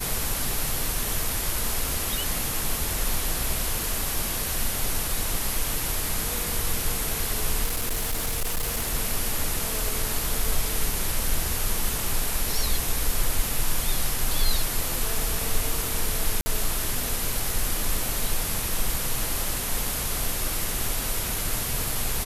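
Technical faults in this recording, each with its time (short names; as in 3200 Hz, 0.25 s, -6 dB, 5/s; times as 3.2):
7.64–8.95 clipped -22 dBFS
16.41–16.46 gap 50 ms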